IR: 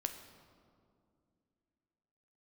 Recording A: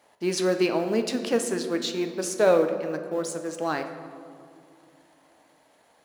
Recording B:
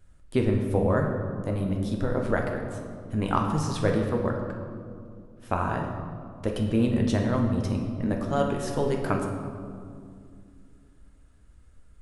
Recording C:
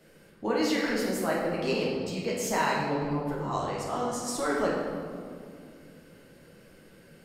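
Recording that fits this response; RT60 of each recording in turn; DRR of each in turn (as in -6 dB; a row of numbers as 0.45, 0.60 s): A; 2.4, 2.4, 2.3 s; 6.5, 1.0, -5.5 dB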